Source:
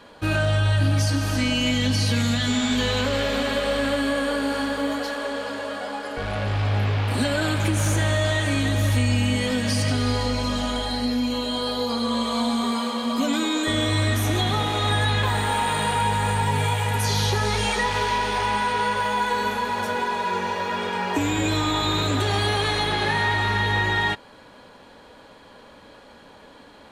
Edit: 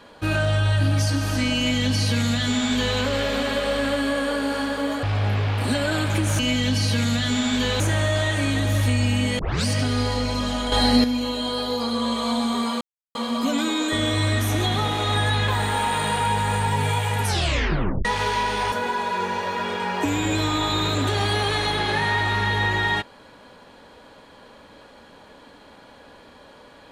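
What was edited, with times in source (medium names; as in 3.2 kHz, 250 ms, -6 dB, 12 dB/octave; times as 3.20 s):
1.57–2.98 s: copy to 7.89 s
5.03–6.53 s: delete
9.48 s: tape start 0.27 s
10.81–11.13 s: gain +8 dB
12.90 s: insert silence 0.34 s
16.99 s: tape stop 0.81 s
18.47–19.85 s: delete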